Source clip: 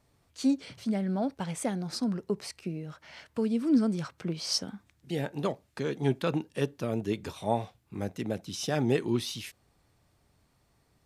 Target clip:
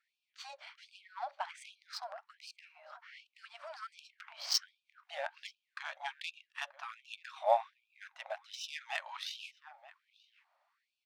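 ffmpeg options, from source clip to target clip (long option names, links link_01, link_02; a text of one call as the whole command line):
ffmpeg -i in.wav -filter_complex "[0:a]adynamicsmooth=sensitivity=3:basefreq=2200,asplit=2[link_01][link_02];[link_02]adelay=932.9,volume=-16dB,highshelf=frequency=4000:gain=-21[link_03];[link_01][link_03]amix=inputs=2:normalize=0,afftfilt=real='re*gte(b*sr/1024,530*pow(2400/530,0.5+0.5*sin(2*PI*1.3*pts/sr)))':imag='im*gte(b*sr/1024,530*pow(2400/530,0.5+0.5*sin(2*PI*1.3*pts/sr)))':win_size=1024:overlap=0.75,volume=2.5dB" out.wav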